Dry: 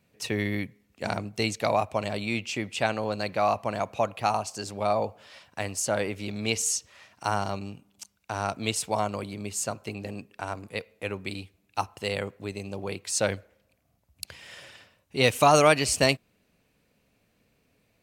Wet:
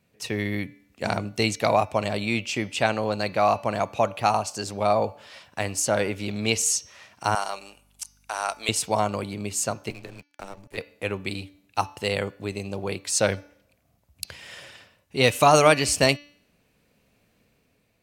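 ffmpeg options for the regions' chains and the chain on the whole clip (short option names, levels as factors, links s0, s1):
-filter_complex "[0:a]asettb=1/sr,asplit=3[s0][s1][s2];[s0]atrim=end=7.354[s3];[s1]atrim=start=7.35:end=8.69,asetpts=PTS-STARTPTS,afade=t=in:d=0.004:c=qsin,afade=t=out:st=1.336:d=0.004:c=qsin,highpass=710,equalizer=f=10000:w=1.5:g=11,aeval=exprs='val(0)+0.000501*(sin(2*PI*50*n/s)+sin(2*PI*2*50*n/s)/2+sin(2*PI*3*50*n/s)/3+sin(2*PI*4*50*n/s)/4+sin(2*PI*5*50*n/s)/5)':c=same[s4];[s2]atrim=start=8.686[s5];[s3][s4]acrossfade=d=0.004:c1=hsin:c2=qsin[s6];[s6][s5]acrossfade=d=0.004:c1=qsin:c2=hsin,asettb=1/sr,asplit=3[s7][s8][s9];[s7]atrim=end=9.904[s10];[s8]atrim=start=9.9:end=10.78,asetpts=PTS-STARTPTS,afade=t=in:d=0.004:c=qsin,afade=t=out:st=0.876:d=0.004:c=qsin,afreqshift=-90,acrossover=split=460|3000[s11][s12][s13];[s11]acompressor=threshold=0.00794:ratio=4[s14];[s12]acompressor=threshold=0.00708:ratio=4[s15];[s13]acompressor=threshold=0.00224:ratio=4[s16];[s14][s15][s16]amix=inputs=3:normalize=0,aeval=exprs='sgn(val(0))*max(abs(val(0))-0.00355,0)':c=same[s17];[s9]atrim=start=10.776[s18];[s10][s17]acrossfade=d=0.004:c1=hsin:c2=qsin[s19];[s19][s18]acrossfade=d=0.004:c1=qsin:c2=hsin,bandreject=f=289.8:t=h:w=4,bandreject=f=579.6:t=h:w=4,bandreject=f=869.4:t=h:w=4,bandreject=f=1159.2:t=h:w=4,bandreject=f=1449:t=h:w=4,bandreject=f=1738.8:t=h:w=4,bandreject=f=2028.6:t=h:w=4,bandreject=f=2318.4:t=h:w=4,bandreject=f=2608.2:t=h:w=4,bandreject=f=2898:t=h:w=4,bandreject=f=3187.8:t=h:w=4,bandreject=f=3477.6:t=h:w=4,bandreject=f=3767.4:t=h:w=4,bandreject=f=4057.2:t=h:w=4,bandreject=f=4347:t=h:w=4,bandreject=f=4636.8:t=h:w=4,bandreject=f=4926.6:t=h:w=4,bandreject=f=5216.4:t=h:w=4,bandreject=f=5506.2:t=h:w=4,bandreject=f=5796:t=h:w=4,bandreject=f=6085.8:t=h:w=4,bandreject=f=6375.6:t=h:w=4,dynaudnorm=f=150:g=9:m=1.58"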